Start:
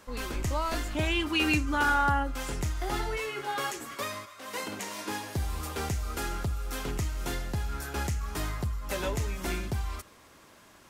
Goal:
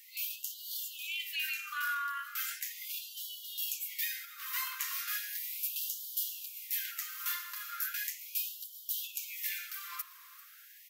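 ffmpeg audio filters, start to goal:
ffmpeg -i in.wav -af "bandreject=frequency=105.1:width_type=h:width=4,bandreject=frequency=210.2:width_type=h:width=4,bandreject=frequency=315.3:width_type=h:width=4,bandreject=frequency=420.4:width_type=h:width=4,bandreject=frequency=525.5:width_type=h:width=4,bandreject=frequency=630.6:width_type=h:width=4,bandreject=frequency=735.7:width_type=h:width=4,bandreject=frequency=840.8:width_type=h:width=4,bandreject=frequency=945.9:width_type=h:width=4,bandreject=frequency=1051:width_type=h:width=4,bandreject=frequency=1156.1:width_type=h:width=4,bandreject=frequency=1261.2:width_type=h:width=4,bandreject=frequency=1366.3:width_type=h:width=4,bandreject=frequency=1471.4:width_type=h:width=4,bandreject=frequency=1576.5:width_type=h:width=4,bandreject=frequency=1681.6:width_type=h:width=4,bandreject=frequency=1786.7:width_type=h:width=4,bandreject=frequency=1891.8:width_type=h:width=4,bandreject=frequency=1996.9:width_type=h:width=4,bandreject=frequency=2102:width_type=h:width=4,bandreject=frequency=2207.1:width_type=h:width=4,bandreject=frequency=2312.2:width_type=h:width=4,bandreject=frequency=2417.3:width_type=h:width=4,bandreject=frequency=2522.4:width_type=h:width=4,bandreject=frequency=2627.5:width_type=h:width=4,bandreject=frequency=2732.6:width_type=h:width=4,bandreject=frequency=2837.7:width_type=h:width=4,bandreject=frequency=2942.8:width_type=h:width=4,bandreject=frequency=3047.9:width_type=h:width=4,bandreject=frequency=3153:width_type=h:width=4,bandreject=frequency=3258.1:width_type=h:width=4,bandreject=frequency=3363.2:width_type=h:width=4,bandreject=frequency=3468.3:width_type=h:width=4,bandreject=frequency=3573.4:width_type=h:width=4,bandreject=frequency=3678.5:width_type=h:width=4,bandreject=frequency=3783.6:width_type=h:width=4,bandreject=frequency=3888.7:width_type=h:width=4,bandreject=frequency=3993.8:width_type=h:width=4,bandreject=frequency=4098.9:width_type=h:width=4,alimiter=level_in=0.5dB:limit=-24dB:level=0:latency=1:release=20,volume=-0.5dB,aecho=1:1:394:0.119,aexciter=amount=7.4:drive=5.2:freq=12000,afftfilt=real='re*gte(b*sr/1024,970*pow(2900/970,0.5+0.5*sin(2*PI*0.37*pts/sr)))':imag='im*gte(b*sr/1024,970*pow(2900/970,0.5+0.5*sin(2*PI*0.37*pts/sr)))':win_size=1024:overlap=0.75" out.wav

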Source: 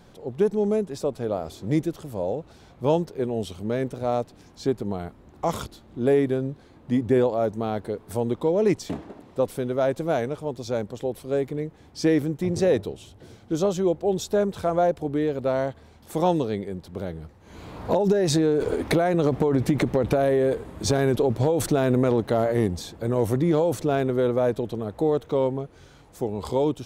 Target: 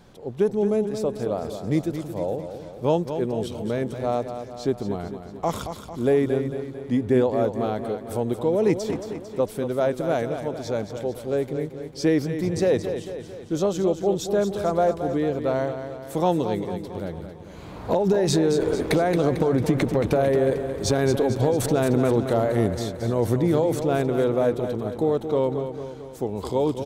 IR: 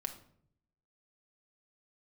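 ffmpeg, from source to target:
-af "aecho=1:1:224|448|672|896|1120|1344:0.355|0.195|0.107|0.059|0.0325|0.0179"

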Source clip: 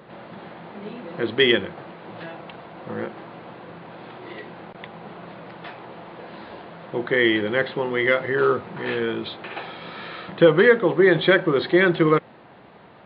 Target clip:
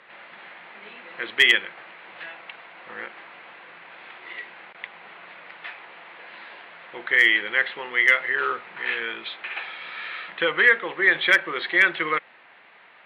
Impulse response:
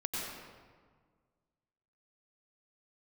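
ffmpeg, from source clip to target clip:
-af "bandpass=frequency=2200:width_type=q:width=2:csg=0,volume=13dB,asoftclip=hard,volume=-13dB,volume=7dB"

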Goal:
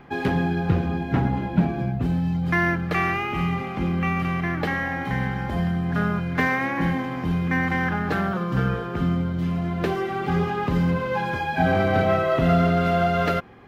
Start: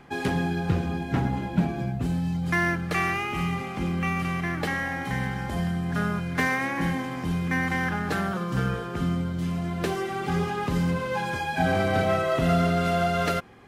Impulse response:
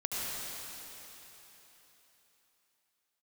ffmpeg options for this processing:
-af "equalizer=frequency=8700:width_type=o:width=1.5:gain=-14.5,volume=3.5dB"

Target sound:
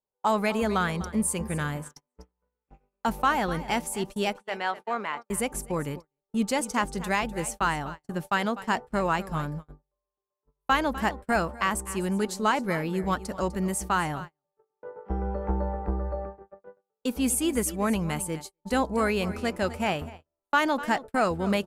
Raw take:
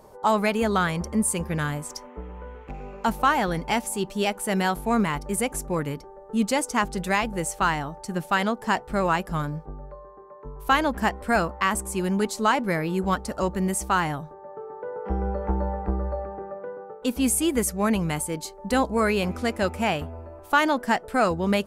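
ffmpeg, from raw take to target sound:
ffmpeg -i in.wav -filter_complex "[0:a]asettb=1/sr,asplit=3[link_01][link_02][link_03];[link_01]atrim=end=4.364[link_04];[link_02]atrim=start=4.36:end=5.3,asetpts=PTS-STARTPTS,afade=type=in:duration=0.004:curve=qsin,afade=type=out:start_time=0.936:duration=0.004:curve=qsin,highpass=520,lowpass=3600[link_05];[link_03]atrim=start=5.296[link_06];[link_04][link_05]acrossfade=duration=0.004:curve1=hsin:curve2=qsin[link_07];[link_07][link_06]acrossfade=duration=0.004:curve1=qsin:curve2=hsin,aecho=1:1:250:0.178,agate=range=-42dB:threshold=-32dB:ratio=16:detection=peak,volume=-3dB" out.wav

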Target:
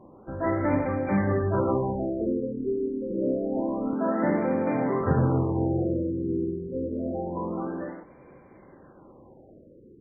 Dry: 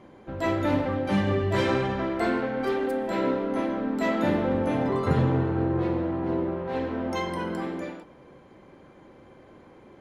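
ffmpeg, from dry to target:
ffmpeg -i in.wav -filter_complex "[0:a]asettb=1/sr,asplit=3[link_01][link_02][link_03];[link_01]atrim=end=3.934[link_04];[link_02]atrim=start=3.93:end=5.01,asetpts=PTS-STARTPTS,afade=type=in:duration=0.004:curve=qsin,afade=type=out:start_time=1.076:duration=0.004:curve=qsin,highpass=frequency=130:width=0.5412,highpass=frequency=130:width=1.3066[link_05];[link_03]atrim=start=5.006[link_06];[link_04][link_05]acrossfade=duration=0.004:curve1=hsin:curve2=qsin[link_07];[link_07][link_06]acrossfade=duration=0.004:curve1=qsin:curve2=hsin,afftfilt=real='re*lt(b*sr/1024,480*pow(2500/480,0.5+0.5*sin(2*PI*0.27*pts/sr)))':imag='im*lt(b*sr/1024,480*pow(2500/480,0.5+0.5*sin(2*PI*0.27*pts/sr)))':win_size=1024:overlap=0.75" out.wav

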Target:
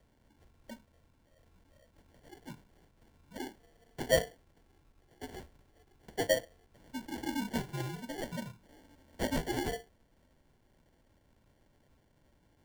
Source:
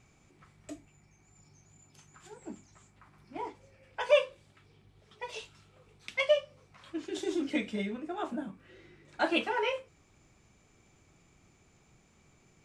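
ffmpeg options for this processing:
ffmpeg -i in.wav -af "acrusher=samples=34:mix=1:aa=0.000001,afreqshift=-68,volume=-3.5dB" out.wav

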